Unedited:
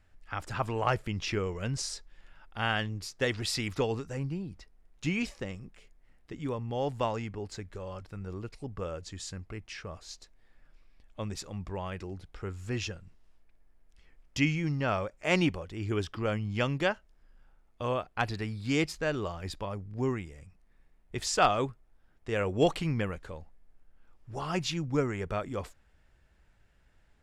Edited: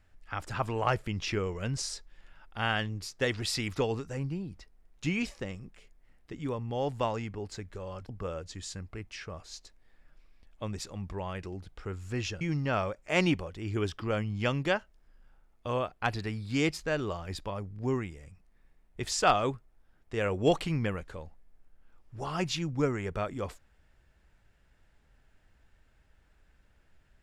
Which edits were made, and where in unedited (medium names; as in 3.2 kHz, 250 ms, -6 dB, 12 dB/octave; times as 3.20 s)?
8.09–8.66 s: delete
12.98–14.56 s: delete